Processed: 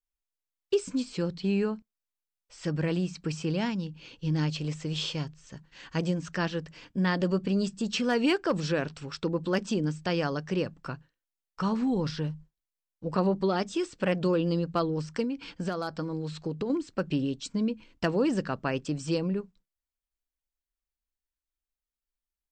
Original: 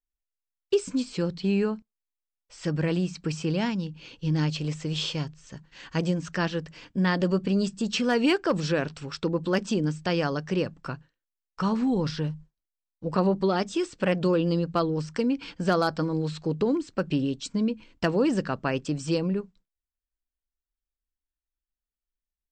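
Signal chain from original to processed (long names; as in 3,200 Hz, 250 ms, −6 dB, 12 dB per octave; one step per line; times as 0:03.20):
0:15.23–0:16.70: downward compressor 6 to 1, threshold −26 dBFS, peak gain reduction 8 dB
level −2.5 dB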